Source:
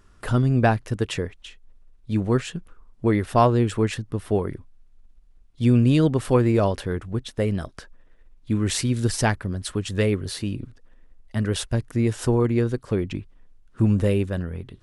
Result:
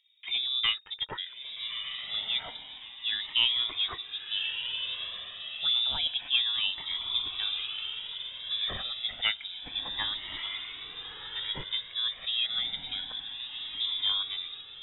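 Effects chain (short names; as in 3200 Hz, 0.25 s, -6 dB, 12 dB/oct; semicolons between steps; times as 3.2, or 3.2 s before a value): Wiener smoothing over 9 samples; low shelf 460 Hz -10 dB; low-pass opened by the level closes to 790 Hz, open at -24.5 dBFS; diffused feedback echo 1.251 s, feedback 41%, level -6 dB; inverted band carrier 3700 Hz; cascading flanger rising 0.29 Hz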